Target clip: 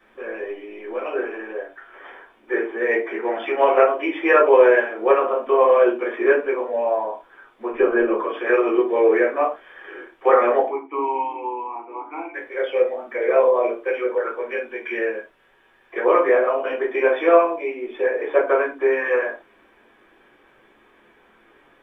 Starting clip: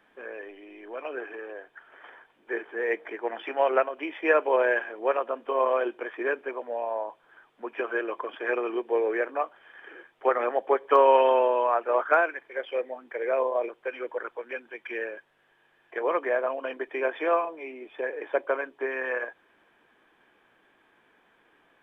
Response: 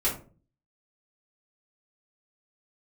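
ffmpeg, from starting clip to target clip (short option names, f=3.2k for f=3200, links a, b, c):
-filter_complex "[0:a]asettb=1/sr,asplit=3[a][b][c];[a]atrim=end=7.724[d];[b]atrim=start=7.72:end=8.18,asetpts=PTS-STARTPTS,afade=t=in:d=0.004:c=qsin,afade=t=out:st=0.456:d=0.004:c=qsin,aemphasis=mode=reproduction:type=riaa[e];[c]atrim=start=8.176[f];[d][e]acrossfade=d=0.004:c1=hsin:c2=qsin[g];[g][f]acrossfade=d=0.004:c1=qsin:c2=hsin,asettb=1/sr,asplit=3[h][i][j];[h]atrim=end=10.684[k];[i]atrim=start=10.68:end=12.34,asetpts=PTS-STARTPTS,afade=t=in:d=0.004:c=qsin,afade=t=out:st=1.656:d=0.004:c=qsin,asplit=3[l][m][n];[l]bandpass=f=300:t=q:w=8,volume=0dB[o];[m]bandpass=f=870:t=q:w=8,volume=-6dB[p];[n]bandpass=f=2.24k:t=q:w=8,volume=-9dB[q];[o][p][q]amix=inputs=3:normalize=0[r];[j]atrim=start=12.336[s];[k][r]acrossfade=d=0.004:c1=hsin:c2=qsin[t];[t][s]acrossfade=d=0.004:c1=qsin:c2=hsin[u];[1:a]atrim=start_sample=2205,atrim=end_sample=6174[v];[u][v]afir=irnorm=-1:irlink=0,volume=-1dB"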